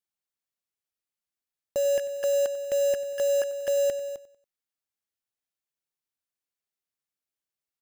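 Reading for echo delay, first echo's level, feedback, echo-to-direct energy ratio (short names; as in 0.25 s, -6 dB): 94 ms, -17.0 dB, 40%, -16.5 dB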